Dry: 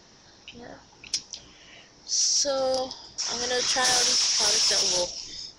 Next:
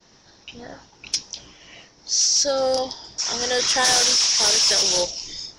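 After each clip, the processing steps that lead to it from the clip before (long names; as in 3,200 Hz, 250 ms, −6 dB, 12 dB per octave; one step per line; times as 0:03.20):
downward expander −49 dBFS
level +4.5 dB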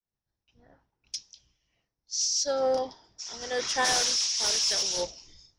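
multiband upward and downward expander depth 100%
level −9 dB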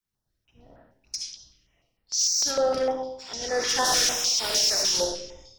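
convolution reverb RT60 0.70 s, pre-delay 25 ms, DRR 2 dB
soft clipping −21.5 dBFS, distortion −15 dB
notch on a step sequencer 6.6 Hz 620–6,200 Hz
level +5.5 dB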